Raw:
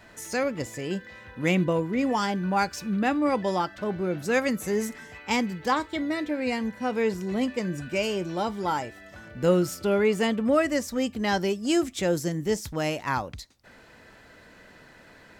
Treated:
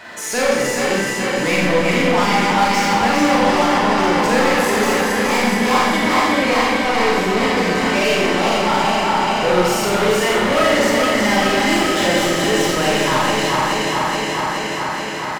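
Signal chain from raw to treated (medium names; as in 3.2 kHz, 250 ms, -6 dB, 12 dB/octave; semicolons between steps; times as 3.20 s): backward echo that repeats 212 ms, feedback 84%, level -5.5 dB; overdrive pedal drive 28 dB, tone 4.7 kHz, clips at -7.5 dBFS; on a send: delay 425 ms -10.5 dB; on the sum: Schroeder reverb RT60 1 s, combs from 30 ms, DRR -3.5 dB; trim -6 dB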